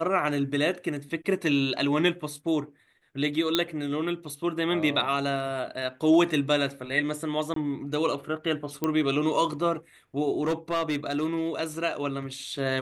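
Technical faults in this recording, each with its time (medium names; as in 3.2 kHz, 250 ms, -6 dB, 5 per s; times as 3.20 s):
3.55 s: pop -8 dBFS
7.54–7.56 s: dropout 23 ms
8.84 s: pop -13 dBFS
10.42–11.48 s: clipped -22 dBFS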